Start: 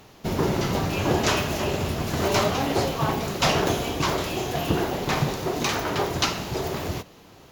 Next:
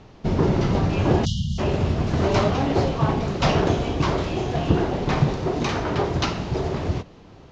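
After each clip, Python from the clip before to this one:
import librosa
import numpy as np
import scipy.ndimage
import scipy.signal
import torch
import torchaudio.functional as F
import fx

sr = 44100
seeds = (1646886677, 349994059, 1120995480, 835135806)

y = fx.spec_erase(x, sr, start_s=1.25, length_s=0.34, low_hz=220.0, high_hz=2800.0)
y = scipy.signal.sosfilt(scipy.signal.butter(4, 6500.0, 'lowpass', fs=sr, output='sos'), y)
y = fx.tilt_eq(y, sr, slope=-2.0)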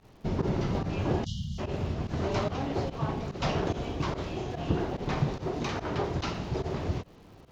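y = fx.rider(x, sr, range_db=10, speed_s=2.0)
y = fx.dmg_crackle(y, sr, seeds[0], per_s=210.0, level_db=-44.0)
y = fx.volume_shaper(y, sr, bpm=145, per_beat=1, depth_db=-17, release_ms=70.0, shape='fast start')
y = F.gain(torch.from_numpy(y), -9.0).numpy()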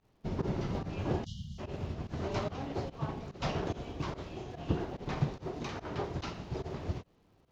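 y = fx.upward_expand(x, sr, threshold_db=-46.0, expansion=1.5)
y = F.gain(torch.from_numpy(y), -2.5).numpy()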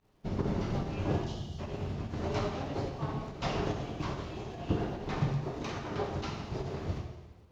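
y = fx.rev_plate(x, sr, seeds[1], rt60_s=1.2, hf_ratio=1.0, predelay_ms=0, drr_db=2.0)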